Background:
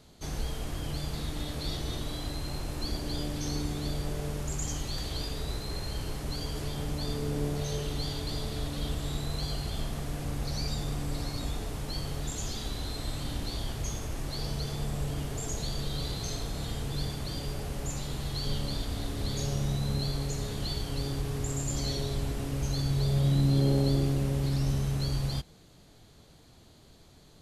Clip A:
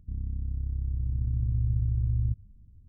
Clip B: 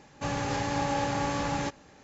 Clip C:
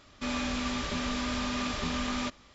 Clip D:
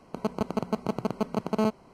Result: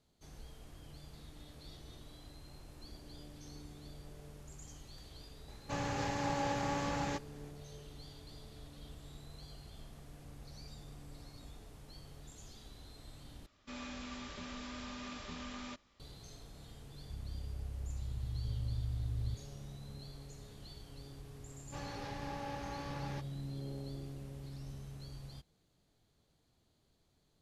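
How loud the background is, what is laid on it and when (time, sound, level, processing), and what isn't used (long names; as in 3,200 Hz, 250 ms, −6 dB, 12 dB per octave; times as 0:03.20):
background −18.5 dB
0:05.48: mix in B −6.5 dB + highs frequency-modulated by the lows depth 0.12 ms
0:13.46: overwrite with C −13.5 dB
0:17.02: mix in A −13.5 dB + harmonic and percussive parts rebalanced harmonic +3 dB
0:21.51: mix in B −14 dB + Butterworth low-pass 5,900 Hz
not used: D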